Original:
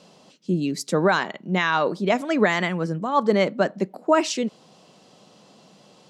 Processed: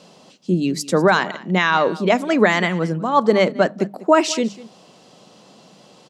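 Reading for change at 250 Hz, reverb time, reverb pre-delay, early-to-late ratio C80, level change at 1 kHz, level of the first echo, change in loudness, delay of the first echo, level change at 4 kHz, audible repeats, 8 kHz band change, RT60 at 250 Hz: +4.0 dB, no reverb audible, no reverb audible, no reverb audible, +4.5 dB, −19.0 dB, +4.5 dB, 197 ms, +4.5 dB, 1, +4.5 dB, no reverb audible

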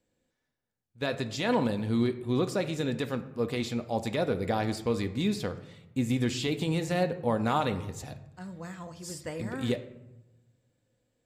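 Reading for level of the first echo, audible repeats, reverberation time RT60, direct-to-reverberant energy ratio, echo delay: no echo audible, no echo audible, 0.95 s, 7.5 dB, no echo audible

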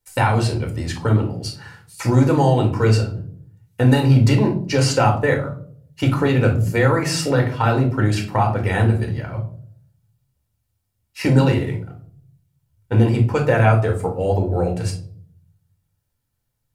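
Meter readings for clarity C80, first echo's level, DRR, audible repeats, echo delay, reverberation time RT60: 15.0 dB, no echo audible, 1.5 dB, no echo audible, no echo audible, 0.55 s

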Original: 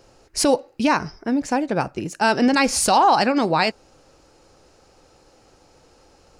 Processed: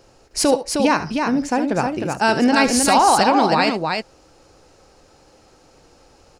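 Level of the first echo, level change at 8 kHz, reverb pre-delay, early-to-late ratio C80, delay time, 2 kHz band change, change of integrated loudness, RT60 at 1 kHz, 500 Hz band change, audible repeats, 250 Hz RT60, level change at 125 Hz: −12.5 dB, +2.5 dB, no reverb audible, no reverb audible, 72 ms, +2.5 dB, +2.0 dB, no reverb audible, +2.5 dB, 2, no reverb audible, +2.5 dB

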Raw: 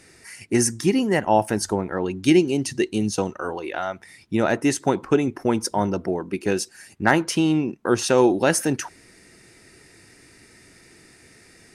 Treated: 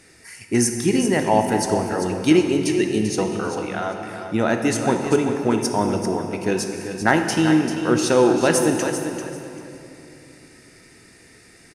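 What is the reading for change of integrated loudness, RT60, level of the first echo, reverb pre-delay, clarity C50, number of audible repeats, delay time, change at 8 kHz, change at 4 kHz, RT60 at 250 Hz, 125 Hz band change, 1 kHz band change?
+1.5 dB, 3.0 s, −9.0 dB, 4 ms, 4.0 dB, 2, 392 ms, +1.5 dB, +1.5 dB, 3.5 s, +2.0 dB, +2.0 dB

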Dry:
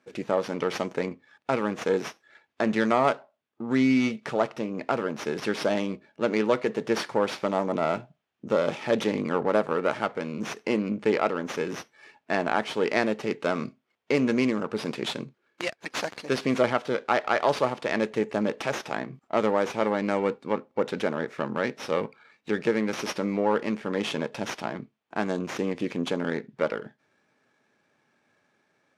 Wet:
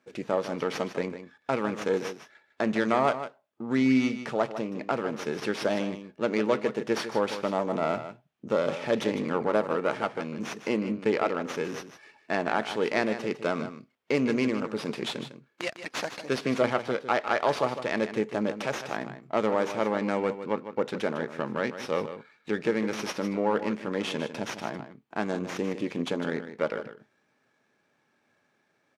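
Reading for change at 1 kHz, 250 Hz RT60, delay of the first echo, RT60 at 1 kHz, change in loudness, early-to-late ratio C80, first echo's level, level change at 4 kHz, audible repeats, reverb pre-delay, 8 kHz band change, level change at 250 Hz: −1.5 dB, no reverb audible, 153 ms, no reverb audible, −1.5 dB, no reverb audible, −11.0 dB, −1.5 dB, 1, no reverb audible, −1.5 dB, −1.5 dB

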